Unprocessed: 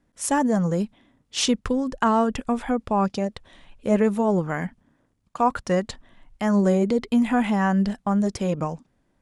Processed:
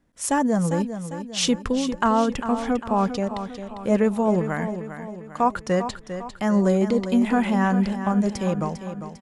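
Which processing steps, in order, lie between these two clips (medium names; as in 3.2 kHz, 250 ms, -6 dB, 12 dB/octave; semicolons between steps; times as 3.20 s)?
feedback delay 400 ms, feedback 49%, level -10 dB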